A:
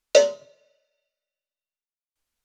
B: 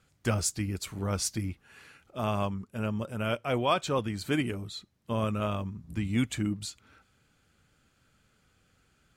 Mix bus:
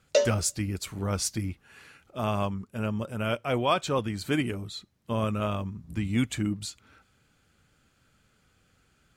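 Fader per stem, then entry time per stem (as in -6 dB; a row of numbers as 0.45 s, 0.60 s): -7.0 dB, +1.5 dB; 0.00 s, 0.00 s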